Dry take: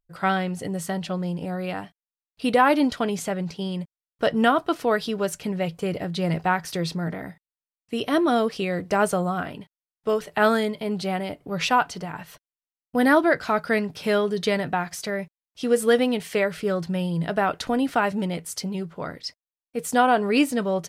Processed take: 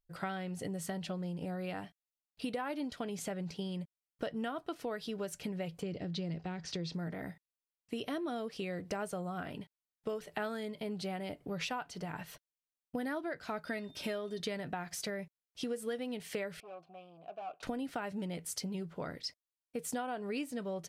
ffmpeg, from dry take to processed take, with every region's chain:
-filter_complex "[0:a]asettb=1/sr,asplit=3[a][b][c];[a]atrim=end=5.824[d];[b]atrim=start=5.82:end=6.94,asetpts=PTS-STARTPTS,afade=t=in:d=0.004:c=qsin,afade=t=out:st=1.116:d=0.004:c=qsin,lowpass=f=6.3k:w=0.5412,lowpass=f=6.3k:w=1.3066,acrossover=split=470|3000[e][f][g];[f]acompressor=threshold=-43dB:ratio=2.5:attack=3.2:release=140:knee=2.83:detection=peak[h];[e][h][g]amix=inputs=3:normalize=0[i];[c]atrim=start=6.936[j];[d][i]acrossfade=d=0.004:c1=hsin:c2=qsin[k];[k][j]acrossfade=d=0.004:c1=qsin:c2=hsin,asettb=1/sr,asplit=3[l][m][n];[l]atrim=end=13.654[o];[m]atrim=start=13.65:end=14.4,asetpts=PTS-STARTPTS,afade=t=in:d=0.004:c=qsin,afade=t=out:st=0.746:d=0.004:c=qsin,aecho=1:1:3.2:0.56,atrim=end_sample=33075,aeval=exprs='val(0)+0.00316*sin(2*PI*3600*n/s)':c=same[p];[n]atrim=start=14.396[q];[o][p]acrossfade=d=0.004:c1=hsin:c2=qsin[r];[r][q]acrossfade=d=0.004:c1=qsin:c2=hsin,asettb=1/sr,asplit=3[s][t][u];[s]atrim=end=16.604[v];[t]atrim=start=16.6:end=17.63,asetpts=PTS-STARTPTS,afade=t=in:d=0.004:c=qsin,afade=t=out:st=1.026:d=0.004:c=qsin,aeval=exprs='(tanh(20*val(0)+0.5)-tanh(0.5))/20':c=same,asplit=3[w][x][y];[w]bandpass=f=730:t=q:w=8,volume=0dB[z];[x]bandpass=f=1.09k:t=q:w=8,volume=-6dB[aa];[y]bandpass=f=2.44k:t=q:w=8,volume=-9dB[ab];[z][aa][ab]amix=inputs=3:normalize=0[ac];[u]atrim=start=17.626[ad];[v][ac]acrossfade=d=0.004:c1=hsin:c2=qsin[ae];[ae][ad]acrossfade=d=0.004:c1=qsin:c2=hsin,equalizer=f=1.1k:t=o:w=0.79:g=-3.5,acompressor=threshold=-31dB:ratio=6,volume=-4.5dB"

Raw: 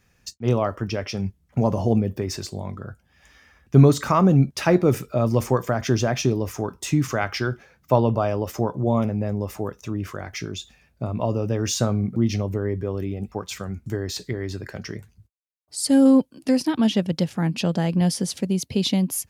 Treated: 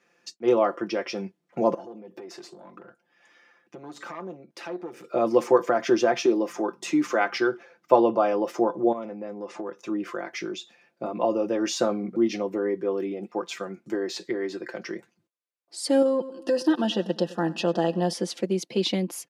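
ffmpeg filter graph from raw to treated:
-filter_complex "[0:a]asettb=1/sr,asplit=3[a][b][c];[a]atrim=end=1.744[d];[b]atrim=start=1.74:end=5.04,asetpts=PTS-STARTPTS,afade=t=in:d=0.004:c=qsin,afade=t=out:st=3.296:d=0.004:c=qsin,acompressor=threshold=-32dB:ratio=4:attack=3.2:release=140:knee=1:detection=peak,aeval=exprs='(tanh(22.4*val(0)+0.7)-tanh(0.7))/22.4':c=same[e];[c]atrim=start=5.036[f];[d][e]acrossfade=d=0.004:c1=hsin:c2=qsin[g];[g][f]acrossfade=d=0.004:c1=qsin:c2=hsin,asettb=1/sr,asplit=3[h][i][j];[h]atrim=end=6.244[k];[i]atrim=start=6.24:end=7.38,asetpts=PTS-STARTPTS,afade=t=in:d=0.004:c=qsin,afade=t=out:st=1.136:d=0.004:c=qsin,highpass=f=190:w=0.5412,highpass=f=190:w=1.3066,aeval=exprs='val(0)+0.00708*(sin(2*PI*50*n/s)+sin(2*PI*2*50*n/s)/2+sin(2*PI*3*50*n/s)/3+sin(2*PI*4*50*n/s)/4+sin(2*PI*5*50*n/s)/5)':c=same[l];[j]atrim=start=7.376[m];[k][l]acrossfade=d=0.004:c1=hsin:c2=qsin[n];[n][m]acrossfade=d=0.004:c1=qsin:c2=hsin,asettb=1/sr,asplit=3[o][p][q];[o]atrim=end=8.924[r];[p]atrim=start=8.92:end=9.76,asetpts=PTS-STARTPTS,afade=t=in:d=0.004:c=qsin,afade=t=out:st=0.836:d=0.004:c=qsin,lowpass=f=7.8k:w=0.5412,lowpass=f=7.8k:w=1.3066,acompressor=threshold=-28dB:ratio=4:attack=3.2:release=140:knee=1:detection=peak[s];[q]atrim=start=9.756[t];[r][s]acrossfade=d=0.004:c1=hsin:c2=qsin[u];[u][t]acrossfade=d=0.004:c1=qsin:c2=hsin,asettb=1/sr,asplit=3[v][w][x];[v]atrim=end=16.024[y];[w]atrim=start=16.02:end=18.13,asetpts=PTS-STARTPTS,afade=t=in:d=0.004:c=qsin,afade=t=out:st=2.106:d=0.004:c=qsin,aecho=1:1:98|196|294|392:0.0944|0.05|0.0265|0.0141,atrim=end_sample=93051,acompressor=threshold=-16dB:ratio=6:attack=3.2:release=140:knee=1:detection=peak,asuperstop=centerf=2200:order=12:qfactor=4[z];[x]atrim=start=18.126[aa];[y][z]acrossfade=d=0.004:c1=hsin:c2=qsin[ab];[ab][aa]acrossfade=d=0.004:c1=qsin:c2=hsin,highpass=f=310:w=0.5412,highpass=f=310:w=1.3066,aemphasis=mode=reproduction:type=bsi,aecho=1:1:5.8:0.67"

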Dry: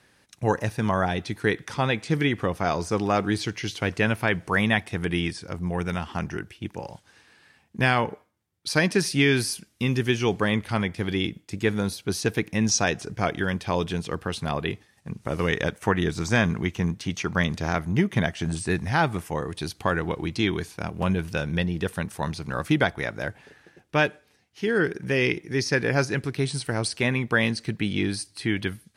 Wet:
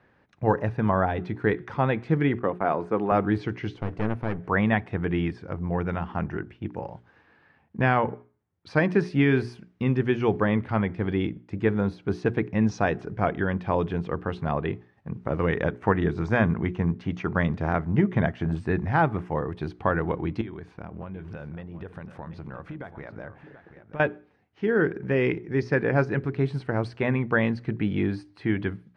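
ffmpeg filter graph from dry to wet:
-filter_complex "[0:a]asettb=1/sr,asplit=3[a][b][c];[a]atrim=end=2.394[d];[b]atrim=start=2.39:end=3.12,asetpts=PTS-STARTPTS,afade=t=in:d=0.004:c=qsin,afade=t=out:st=0.726:d=0.004:c=qsin,highpass=200,agate=range=-33dB:threshold=-37dB:ratio=3:release=100:detection=peak,equalizer=f=5.5k:w=1.9:g=-13.5[e];[c]atrim=start=3.116[f];[d][e]acrossfade=d=0.004:c1=hsin:c2=qsin[g];[g][f]acrossfade=d=0.004:c1=qsin:c2=hsin,asettb=1/sr,asplit=3[h][i][j];[h]atrim=end=3.754[k];[i]atrim=start=3.75:end=4.44,asetpts=PTS-STARTPTS,afade=t=in:d=0.004:c=qsin,afade=t=out:st=0.686:d=0.004:c=qsin,equalizer=f=1.8k:w=0.4:g=-6,aeval=exprs='clip(val(0),-1,0.0158)':c=same[l];[j]atrim=start=4.436[m];[k][l]acrossfade=d=0.004:c1=hsin:c2=qsin[n];[n][m]acrossfade=d=0.004:c1=qsin:c2=hsin,asettb=1/sr,asplit=3[o][p][q];[o]atrim=end=20.414[r];[p]atrim=start=20.41:end=24,asetpts=PTS-STARTPTS,afade=t=in:d=0.004:c=qsin,afade=t=out:st=3.586:d=0.004:c=qsin,acompressor=threshold=-34dB:ratio=10:attack=3.2:release=140:knee=1:detection=peak,aecho=1:1:732:0.237,atrim=end_sample=158319[s];[q]atrim=start=23.996[t];[r][s]acrossfade=d=0.004:c1=hsin:c2=qsin[u];[u][t]acrossfade=d=0.004:c1=qsin:c2=hsin,lowpass=1.5k,bandreject=f=60:t=h:w=6,bandreject=f=120:t=h:w=6,bandreject=f=180:t=h:w=6,bandreject=f=240:t=h:w=6,bandreject=f=300:t=h:w=6,bandreject=f=360:t=h:w=6,bandreject=f=420:t=h:w=6,volume=1.5dB"

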